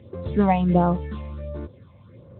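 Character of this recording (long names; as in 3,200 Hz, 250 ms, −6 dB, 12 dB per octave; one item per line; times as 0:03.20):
phaser sweep stages 6, 1.4 Hz, lowest notch 380–3,000 Hz
Speex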